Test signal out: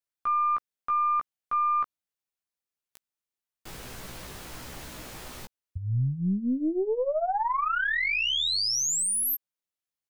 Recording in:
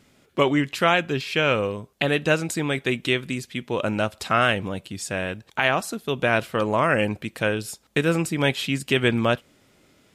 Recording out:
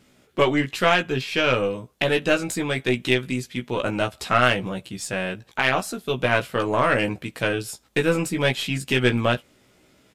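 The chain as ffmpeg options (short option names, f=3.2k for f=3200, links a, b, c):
-filter_complex "[0:a]asplit=2[a][b];[b]adelay=16,volume=-4dB[c];[a][c]amix=inputs=2:normalize=0,aeval=exprs='0.794*(cos(1*acos(clip(val(0)/0.794,-1,1)))-cos(1*PI/2))+0.0891*(cos(2*acos(clip(val(0)/0.794,-1,1)))-cos(2*PI/2))+0.0251*(cos(4*acos(clip(val(0)/0.794,-1,1)))-cos(4*PI/2))+0.0447*(cos(6*acos(clip(val(0)/0.794,-1,1)))-cos(6*PI/2))':c=same,volume=-1dB"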